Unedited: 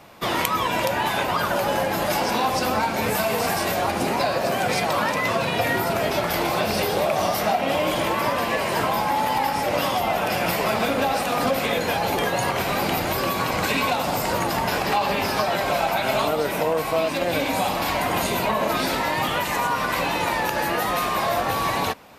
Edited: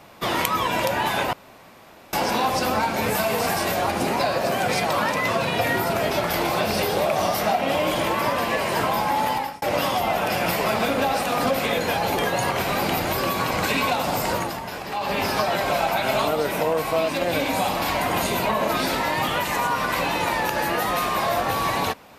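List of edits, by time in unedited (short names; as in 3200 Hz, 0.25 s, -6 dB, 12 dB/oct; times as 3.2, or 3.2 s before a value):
1.33–2.13 room tone
9.29–9.62 fade out
14.31–15.2 dip -9 dB, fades 0.29 s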